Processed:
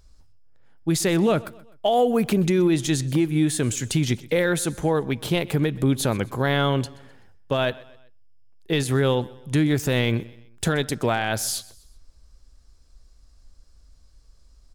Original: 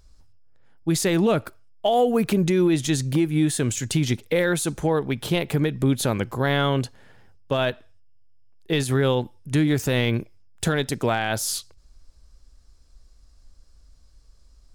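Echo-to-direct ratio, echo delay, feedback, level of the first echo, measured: -20.5 dB, 0.127 s, 45%, -21.5 dB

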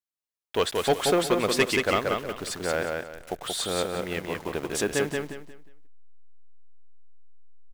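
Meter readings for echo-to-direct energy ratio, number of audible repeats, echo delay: -3.0 dB, 3, 0.18 s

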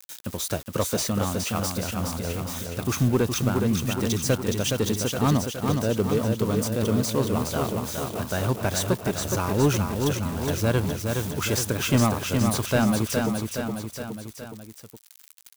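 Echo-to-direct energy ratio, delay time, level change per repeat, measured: -2.5 dB, 0.417 s, -4.5 dB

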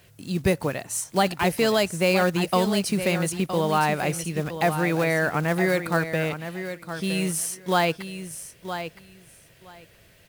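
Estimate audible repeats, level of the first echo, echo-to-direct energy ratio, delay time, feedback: 2, -10.0 dB, -10.0 dB, 0.966 s, 16%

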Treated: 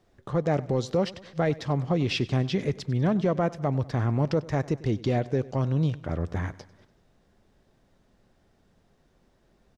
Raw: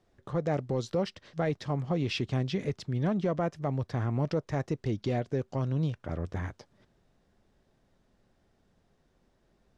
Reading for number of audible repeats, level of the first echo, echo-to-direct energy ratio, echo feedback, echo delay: 3, -20.0 dB, -18.5 dB, 55%, 97 ms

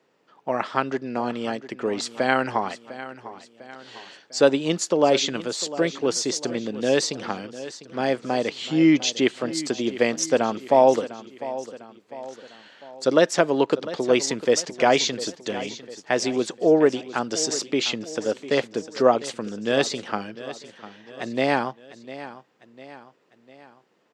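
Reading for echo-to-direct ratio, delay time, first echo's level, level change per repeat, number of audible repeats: -14.0 dB, 0.701 s, -15.0 dB, -6.0 dB, 3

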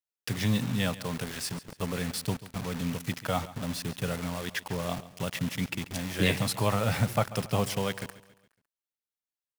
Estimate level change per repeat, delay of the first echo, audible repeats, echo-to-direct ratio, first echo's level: -7.0 dB, 0.139 s, 3, -16.0 dB, -17.0 dB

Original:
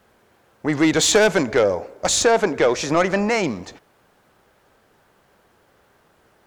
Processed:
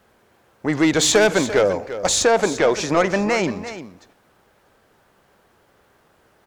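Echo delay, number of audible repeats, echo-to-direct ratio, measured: 0.344 s, 1, -12.5 dB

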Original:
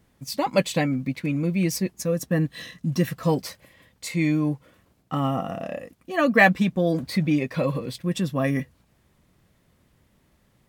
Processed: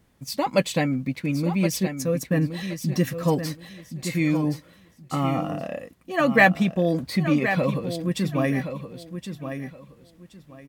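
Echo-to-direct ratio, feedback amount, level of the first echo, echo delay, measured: -9.0 dB, 22%, -9.0 dB, 1.071 s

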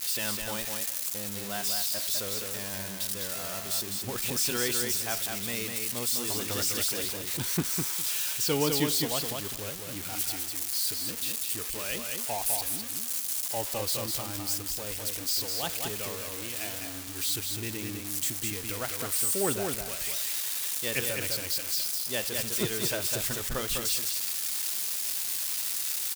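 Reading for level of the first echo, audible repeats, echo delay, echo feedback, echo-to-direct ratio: -4.5 dB, 2, 0.204 s, 17%, -4.5 dB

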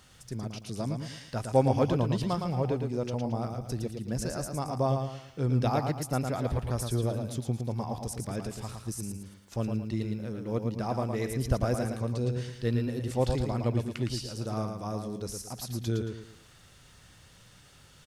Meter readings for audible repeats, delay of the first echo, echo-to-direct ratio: 4, 0.112 s, -5.0 dB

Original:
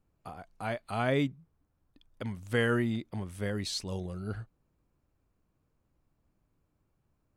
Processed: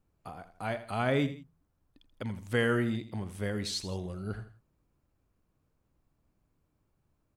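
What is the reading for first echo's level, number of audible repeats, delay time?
-13.0 dB, 2, 82 ms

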